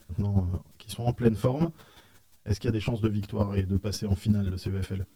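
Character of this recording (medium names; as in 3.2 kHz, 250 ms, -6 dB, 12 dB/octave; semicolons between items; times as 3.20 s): a quantiser's noise floor 12-bit, dither triangular; chopped level 5.6 Hz, depth 60%, duty 15%; a shimmering, thickened sound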